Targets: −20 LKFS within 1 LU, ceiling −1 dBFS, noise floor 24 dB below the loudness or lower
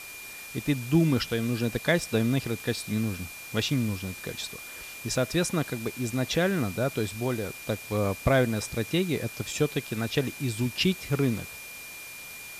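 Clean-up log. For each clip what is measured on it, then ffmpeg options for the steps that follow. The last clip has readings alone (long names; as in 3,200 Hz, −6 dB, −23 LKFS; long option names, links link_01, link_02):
interfering tone 2,400 Hz; level of the tone −42 dBFS; background noise floor −42 dBFS; target noise floor −53 dBFS; integrated loudness −28.5 LKFS; sample peak −11.0 dBFS; target loudness −20.0 LKFS
→ -af "bandreject=frequency=2400:width=30"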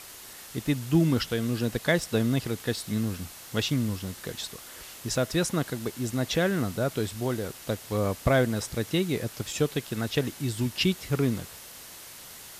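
interfering tone none found; background noise floor −45 dBFS; target noise floor −53 dBFS
→ -af "afftdn=noise_reduction=8:noise_floor=-45"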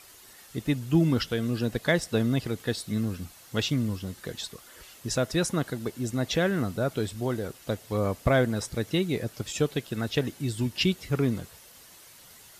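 background noise floor −52 dBFS; target noise floor −53 dBFS
→ -af "afftdn=noise_reduction=6:noise_floor=-52"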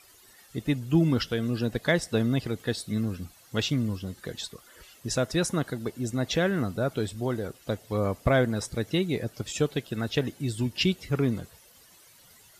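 background noise floor −56 dBFS; integrated loudness −28.5 LKFS; sample peak −11.0 dBFS; target loudness −20.0 LKFS
→ -af "volume=8.5dB"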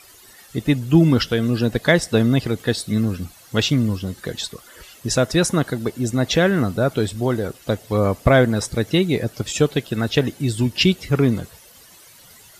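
integrated loudness −20.0 LKFS; sample peak −2.5 dBFS; background noise floor −47 dBFS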